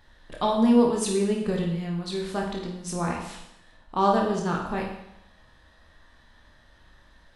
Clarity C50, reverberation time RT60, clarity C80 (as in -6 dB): 4.0 dB, 0.80 s, 6.5 dB